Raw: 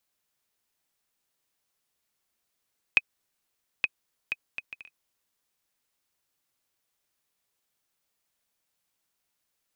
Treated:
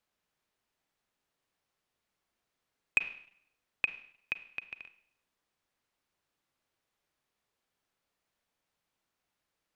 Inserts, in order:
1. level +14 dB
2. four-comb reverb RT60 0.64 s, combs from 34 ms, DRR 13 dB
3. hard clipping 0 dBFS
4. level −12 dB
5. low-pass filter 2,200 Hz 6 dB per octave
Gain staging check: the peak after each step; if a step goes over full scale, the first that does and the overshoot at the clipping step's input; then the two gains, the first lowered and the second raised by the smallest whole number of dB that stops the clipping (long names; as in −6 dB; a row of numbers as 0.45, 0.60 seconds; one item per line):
+8.0, +8.0, 0.0, −12.0, −13.0 dBFS
step 1, 8.0 dB
step 1 +6 dB, step 4 −4 dB